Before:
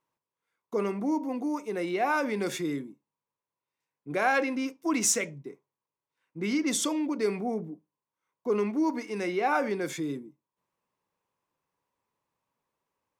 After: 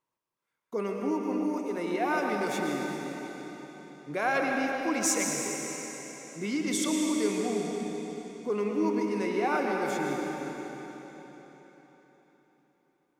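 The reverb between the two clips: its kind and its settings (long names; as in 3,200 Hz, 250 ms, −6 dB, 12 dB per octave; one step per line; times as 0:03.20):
comb and all-pass reverb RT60 4.2 s, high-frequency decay 0.95×, pre-delay 75 ms, DRR 0 dB
level −3 dB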